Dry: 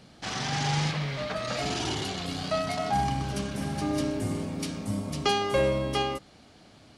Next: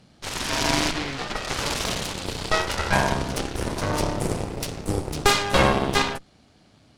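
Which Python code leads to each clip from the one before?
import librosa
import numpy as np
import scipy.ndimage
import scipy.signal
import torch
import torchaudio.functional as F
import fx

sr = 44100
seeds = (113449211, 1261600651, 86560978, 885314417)

y = fx.cheby_harmonics(x, sr, harmonics=(4, 7, 8), levels_db=(-11, -14, -17), full_scale_db=-11.0)
y = fx.bass_treble(y, sr, bass_db=4, treble_db=1)
y = y * 10.0 ** (4.0 / 20.0)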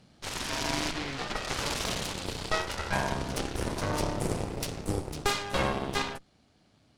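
y = fx.rider(x, sr, range_db=3, speed_s=0.5)
y = y * 10.0 ** (-7.0 / 20.0)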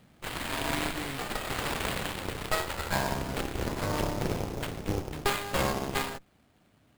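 y = fx.sample_hold(x, sr, seeds[0], rate_hz=5900.0, jitter_pct=20)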